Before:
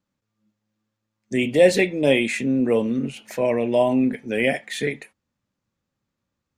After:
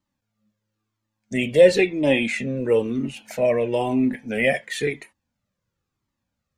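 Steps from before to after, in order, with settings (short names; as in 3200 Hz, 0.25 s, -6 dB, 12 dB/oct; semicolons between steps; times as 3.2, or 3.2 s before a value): 1.61–2.57 high shelf 9200 Hz -11 dB; cascading flanger falling 0.99 Hz; gain +4.5 dB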